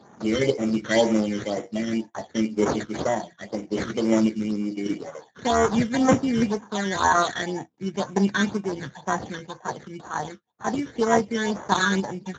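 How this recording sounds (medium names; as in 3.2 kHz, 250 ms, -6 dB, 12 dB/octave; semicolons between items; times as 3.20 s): random-step tremolo; aliases and images of a low sample rate 2.6 kHz, jitter 0%; phasing stages 12, 2 Hz, lowest notch 780–4400 Hz; Speex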